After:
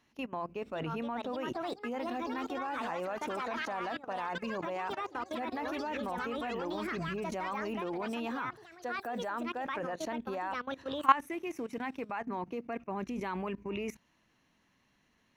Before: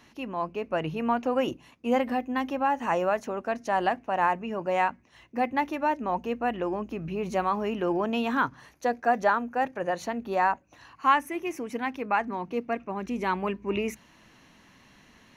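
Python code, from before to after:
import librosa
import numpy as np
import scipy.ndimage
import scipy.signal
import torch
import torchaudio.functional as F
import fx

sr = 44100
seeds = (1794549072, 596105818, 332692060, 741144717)

y = fx.echo_pitch(x, sr, ms=613, semitones=5, count=3, db_per_echo=-6.0)
y = fx.level_steps(y, sr, step_db=18)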